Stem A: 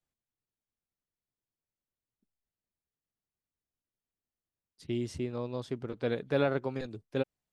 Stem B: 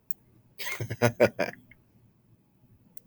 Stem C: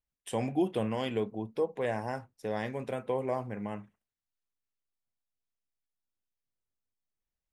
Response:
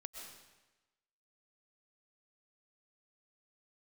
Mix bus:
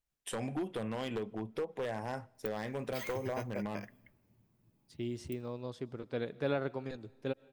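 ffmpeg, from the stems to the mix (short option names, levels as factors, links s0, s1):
-filter_complex "[0:a]adelay=100,volume=0.501,asplit=2[s0][s1];[s1]volume=0.224[s2];[1:a]acompressor=threshold=0.0282:ratio=5,adelay=2350,volume=0.376,asplit=2[s3][s4];[s4]volume=0.0944[s5];[2:a]acompressor=threshold=0.02:ratio=5,aeval=exprs='0.0316*(abs(mod(val(0)/0.0316+3,4)-2)-1)':c=same,volume=1.12,asplit=2[s6][s7];[s7]volume=0.0794[s8];[3:a]atrim=start_sample=2205[s9];[s2][s5][s8]amix=inputs=3:normalize=0[s10];[s10][s9]afir=irnorm=-1:irlink=0[s11];[s0][s3][s6][s11]amix=inputs=4:normalize=0"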